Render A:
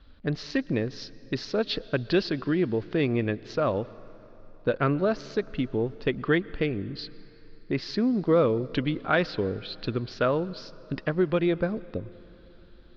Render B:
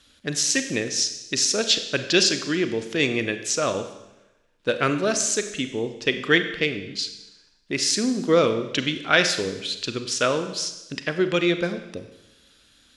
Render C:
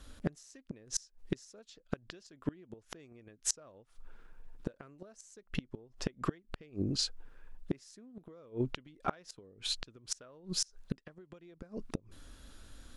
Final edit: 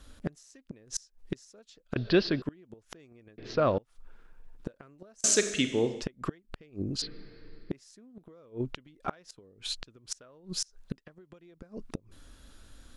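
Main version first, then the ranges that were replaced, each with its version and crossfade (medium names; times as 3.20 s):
C
1.96–2.42 s: from A
3.38–3.78 s: from A
5.24–6.02 s: from B
7.02–7.71 s: from A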